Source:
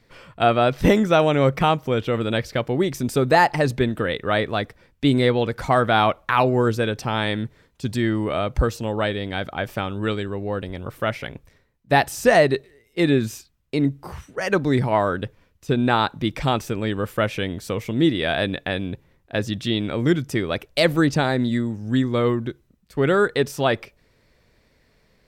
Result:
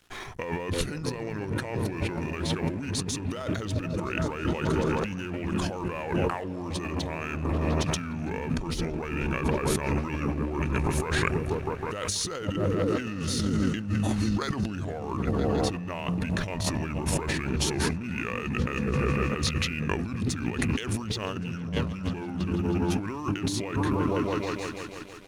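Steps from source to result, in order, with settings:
brickwall limiter −12.5 dBFS, peak gain reduction 8 dB
mains-hum notches 60/120/180 Hz
on a send: echo whose low-pass opens from repeat to repeat 160 ms, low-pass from 200 Hz, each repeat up 1 octave, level −3 dB
on the sum: pitch shifter −5.5 semitones
high-shelf EQ 2,300 Hz +11.5 dB
compressor whose output falls as the input rises −29 dBFS, ratio −1
dead-zone distortion −51 dBFS

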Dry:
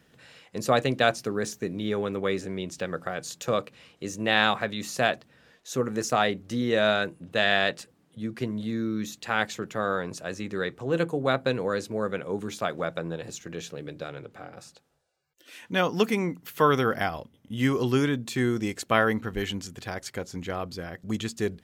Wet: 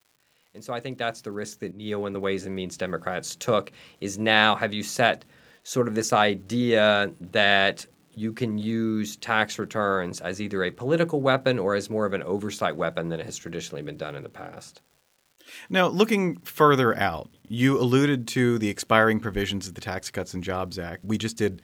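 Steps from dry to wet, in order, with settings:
fade in at the beginning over 3.20 s
surface crackle 260 per second −52 dBFS
0:01.71–0:02.15: multiband upward and downward expander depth 100%
level +3.5 dB

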